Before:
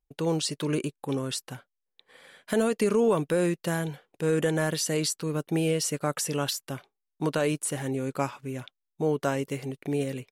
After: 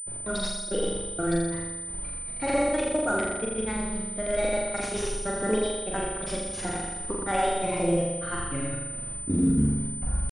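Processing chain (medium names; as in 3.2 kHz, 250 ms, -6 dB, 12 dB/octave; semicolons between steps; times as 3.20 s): tape stop on the ending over 2.12 s; gate -53 dBFS, range -23 dB; small resonant body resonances 1.1/2.9 kHz, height 13 dB, ringing for 65 ms; in parallel at +3 dB: compression 8:1, threshold -39 dBFS, peak gain reduction 20.5 dB; on the sum: peak limiter -16.5 dBFS, peak gain reduction 6 dB; spectral noise reduction 7 dB; pitch shift +4.5 st; added noise brown -40 dBFS; trance gate "xxx.xx..xxxx.." 180 bpm -60 dB; granulator 100 ms, pitch spread up and down by 0 st; on a send: flutter echo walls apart 7.1 m, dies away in 1.2 s; on the sum: class-D stage that switches slowly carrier 9 kHz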